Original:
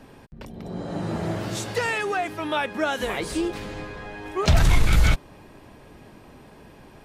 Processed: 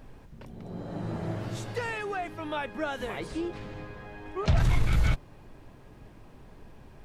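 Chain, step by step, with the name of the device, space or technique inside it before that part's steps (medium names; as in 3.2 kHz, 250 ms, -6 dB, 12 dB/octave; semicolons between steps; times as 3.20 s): 3.27–4.60 s: Bessel low-pass 6.8 kHz; car interior (peaking EQ 120 Hz +6 dB 0.53 oct; treble shelf 3.5 kHz -6.5 dB; brown noise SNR 20 dB); trim -7 dB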